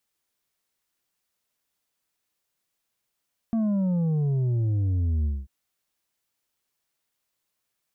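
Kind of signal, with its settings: sub drop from 230 Hz, over 1.94 s, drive 5.5 dB, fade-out 0.22 s, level -22 dB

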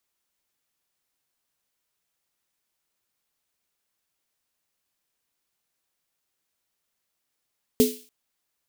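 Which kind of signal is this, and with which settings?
snare drum length 0.29 s, tones 250 Hz, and 430 Hz, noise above 2700 Hz, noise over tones -10 dB, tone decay 0.29 s, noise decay 0.46 s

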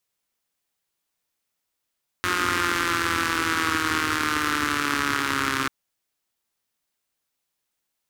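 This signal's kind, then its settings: four-cylinder engine model, changing speed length 3.44 s, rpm 5400, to 4000, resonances 99/290/1300 Hz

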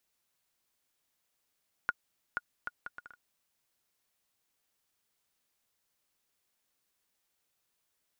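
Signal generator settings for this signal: bouncing ball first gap 0.48 s, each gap 0.63, 1440 Hz, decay 35 ms -16.5 dBFS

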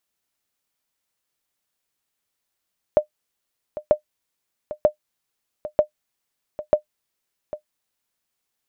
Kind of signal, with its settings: sonar ping 605 Hz, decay 0.10 s, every 0.94 s, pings 5, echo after 0.80 s, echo -15 dB -5.5 dBFS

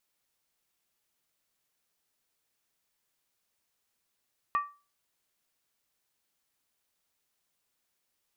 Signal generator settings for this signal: skin hit, lowest mode 1160 Hz, decay 0.32 s, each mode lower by 10.5 dB, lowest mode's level -21.5 dB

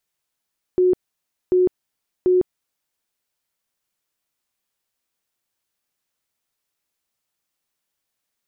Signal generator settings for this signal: tone bursts 365 Hz, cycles 56, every 0.74 s, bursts 3, -12.5 dBFS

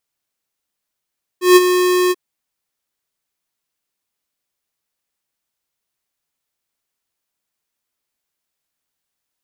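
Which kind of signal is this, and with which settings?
ADSR square 362 Hz, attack 0.152 s, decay 33 ms, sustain -9 dB, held 0.70 s, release 36 ms -5.5 dBFS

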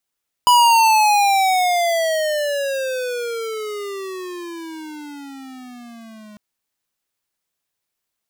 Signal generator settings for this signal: gliding synth tone square, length 5.90 s, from 988 Hz, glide -27 st, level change -29.5 dB, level -11 dB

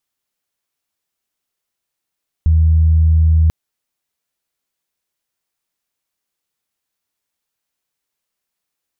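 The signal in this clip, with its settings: steady additive tone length 1.04 s, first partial 80 Hz, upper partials -17.5 dB, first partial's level -8 dB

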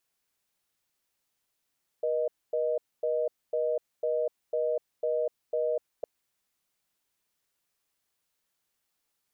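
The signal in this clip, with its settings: call progress tone reorder tone, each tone -28 dBFS 4.01 s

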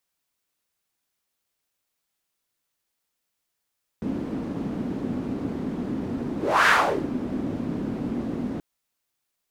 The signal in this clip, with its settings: whoosh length 4.58 s, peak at 2.65, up 0.31 s, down 0.43 s, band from 250 Hz, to 1600 Hz, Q 3, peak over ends 12 dB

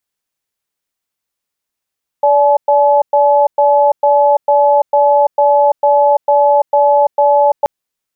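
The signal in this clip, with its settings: cadence 578 Hz, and 855 Hz, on 0.34 s, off 0.11 s, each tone -9.5 dBFS 5.43 s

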